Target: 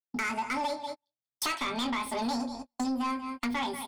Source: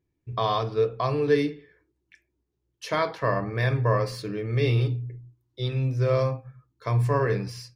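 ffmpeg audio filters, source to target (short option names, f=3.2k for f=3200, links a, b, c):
-filter_complex "[0:a]bandreject=f=3.5k:w=9,asplit=2[a][b];[b]adelay=46,volume=-9.5dB[c];[a][c]amix=inputs=2:normalize=0,aecho=1:1:376|752:0.133|0.0227,dynaudnorm=f=260:g=9:m=7dB,agate=range=-44dB:threshold=-37dB:ratio=16:detection=peak,highshelf=f=6.3k:g=-5.5,asetrate=88200,aresample=44100,acompressor=threshold=-30dB:ratio=8,equalizer=f=4.5k:w=0.47:g=4.5,asoftclip=type=tanh:threshold=-29dB,volume=3.5dB"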